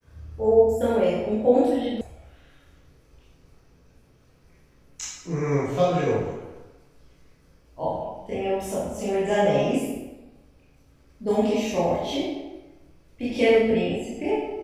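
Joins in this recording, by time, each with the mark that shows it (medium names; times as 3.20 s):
2.01 s: sound stops dead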